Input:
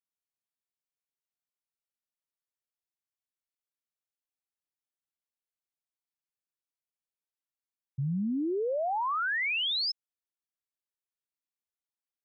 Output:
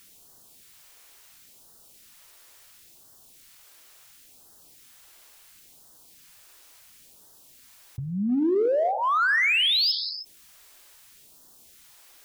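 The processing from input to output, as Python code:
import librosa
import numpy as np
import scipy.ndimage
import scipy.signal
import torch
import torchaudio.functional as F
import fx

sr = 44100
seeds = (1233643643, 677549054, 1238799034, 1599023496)

p1 = fx.phaser_stages(x, sr, stages=2, low_hz=150.0, high_hz=2400.0, hz=0.72, feedback_pct=0)
p2 = fx.rev_gated(p1, sr, seeds[0], gate_ms=340, shape='falling', drr_db=11.0)
p3 = np.clip(10.0 ** (34.0 / 20.0) * p2, -1.0, 1.0) / 10.0 ** (34.0 / 20.0)
p4 = p2 + F.gain(torch.from_numpy(p3), -11.0).numpy()
p5 = fx.env_flatten(p4, sr, amount_pct=50)
y = F.gain(torch.from_numpy(p5), 6.5).numpy()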